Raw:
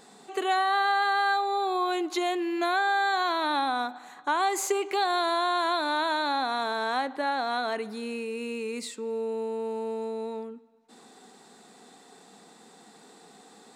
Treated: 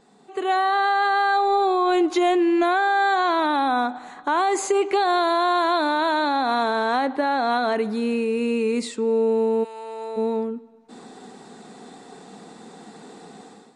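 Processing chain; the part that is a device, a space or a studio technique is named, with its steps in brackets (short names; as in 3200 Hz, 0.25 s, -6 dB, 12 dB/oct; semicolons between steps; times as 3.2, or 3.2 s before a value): 2.08–3.99 notch 4200 Hz, Q 14; 9.63–10.16 HPF 1500 Hz -> 690 Hz 12 dB/oct; tilt -2 dB/oct; low-bitrate web radio (AGC gain up to 14 dB; limiter -7 dBFS, peak gain reduction 4.5 dB; gain -5 dB; MP3 48 kbps 32000 Hz)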